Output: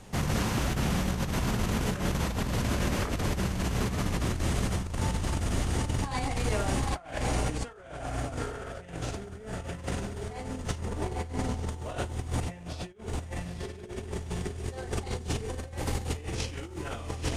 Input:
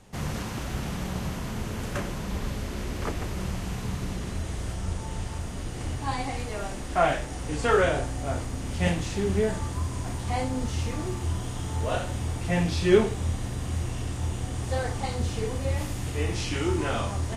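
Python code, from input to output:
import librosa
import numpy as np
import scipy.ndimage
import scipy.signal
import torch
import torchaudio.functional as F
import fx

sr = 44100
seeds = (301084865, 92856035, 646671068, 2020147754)

y = fx.lowpass(x, sr, hz=1200.0, slope=24, at=(10.78, 11.69))
y = fx.echo_diffused(y, sr, ms=896, feedback_pct=48, wet_db=-4.0)
y = fx.over_compress(y, sr, threshold_db=-31.0, ratio=-0.5)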